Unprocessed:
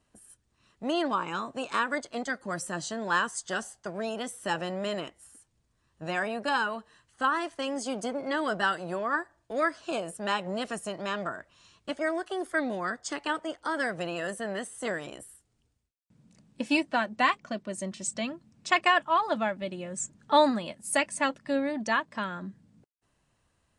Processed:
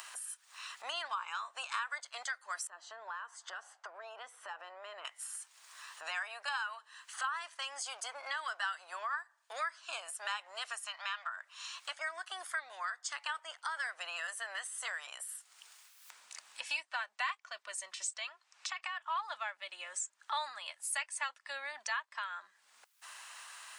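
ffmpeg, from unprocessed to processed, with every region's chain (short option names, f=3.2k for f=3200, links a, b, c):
-filter_complex "[0:a]asettb=1/sr,asplit=3[a][b][c];[a]atrim=end=2.674[d];[b]atrim=start=2.67:end=5.05,asetpts=PTS-STARTPTS,afade=t=in:d=0.004:c=qsin,afade=t=out:st=2.376:d=0.004:c=qsin,acompressor=threshold=-38dB:ratio=2:attack=3.2:release=140:knee=1:detection=peak,bandpass=f=360:t=q:w=0.71[e];[c]atrim=start=5.046[f];[d][e]acrossfade=d=0.004:c1=hsin:c2=qsin[g];[g][f]acrossfade=d=0.004:c1=qsin:c2=hsin,asettb=1/sr,asplit=3[h][i][j];[h]atrim=end=10.844[k];[i]atrim=start=10.84:end=11.37,asetpts=PTS-STARTPTS,afade=t=in:d=0.004:c=qsin,afade=t=out:st=0.526:d=0.004:c=qsin,asuperpass=centerf=1700:order=4:qfactor=0.56,aemphasis=mode=production:type=bsi[l];[j]atrim=start=11.366[m];[k][l]acrossfade=d=0.004:c1=hsin:c2=qsin[n];[n][m]acrossfade=d=0.004:c1=qsin:c2=hsin,asettb=1/sr,asplit=3[o][p][q];[o]atrim=end=18.284[r];[p]atrim=start=18.28:end=19.08,asetpts=PTS-STARTPTS,afade=t=in:d=0.004:c=qsin,afade=t=out:st=0.796:d=0.004:c=qsin,acompressor=threshold=-32dB:ratio=6:attack=3.2:release=140:knee=1:detection=peak,afreqshift=33,highpass=530,lowpass=7.2k[s];[q]atrim=start=19.076[t];[r][s]acrossfade=d=0.004:c1=hsin:c2=qsin[u];[u][t]acrossfade=d=0.004:c1=qsin:c2=hsin,acompressor=mode=upward:threshold=-38dB:ratio=2.5,highpass=f=1k:w=0.5412,highpass=f=1k:w=1.3066,acompressor=threshold=-52dB:ratio=2.5,volume=9dB"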